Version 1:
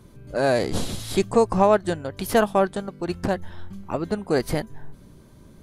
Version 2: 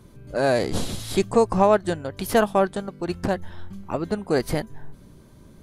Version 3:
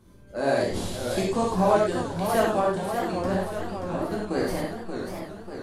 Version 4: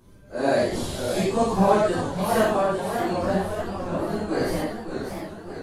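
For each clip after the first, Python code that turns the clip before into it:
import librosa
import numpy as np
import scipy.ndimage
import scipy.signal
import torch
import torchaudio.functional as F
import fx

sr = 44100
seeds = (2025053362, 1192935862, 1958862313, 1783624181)

y1 = x
y2 = fx.rev_gated(y1, sr, seeds[0], gate_ms=130, shape='flat', drr_db=-4.5)
y2 = fx.echo_warbled(y2, sr, ms=586, feedback_pct=59, rate_hz=2.8, cents=178, wet_db=-7)
y2 = y2 * 10.0 ** (-9.0 / 20.0)
y3 = fx.phase_scramble(y2, sr, seeds[1], window_ms=100)
y3 = y3 * 10.0 ** (2.0 / 20.0)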